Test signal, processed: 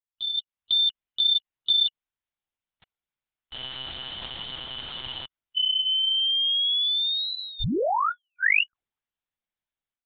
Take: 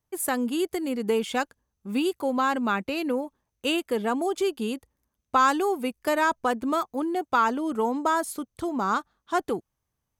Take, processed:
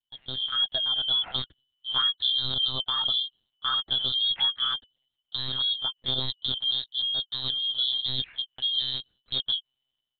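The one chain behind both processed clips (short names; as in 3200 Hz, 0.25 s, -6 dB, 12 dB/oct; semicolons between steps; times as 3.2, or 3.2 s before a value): four-band scrambler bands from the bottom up 2413; low shelf 210 Hz -3 dB; AGC gain up to 12.5 dB; limiter -8 dBFS; monotone LPC vocoder at 8 kHz 130 Hz; gain -9 dB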